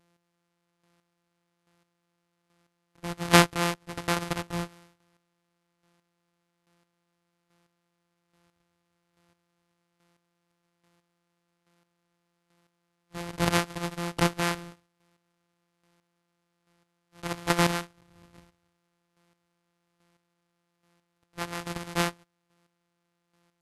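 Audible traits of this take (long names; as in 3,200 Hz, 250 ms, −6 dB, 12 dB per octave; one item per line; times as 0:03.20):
a buzz of ramps at a fixed pitch in blocks of 256 samples
chopped level 1.2 Hz, depth 65%, duty 20%
AAC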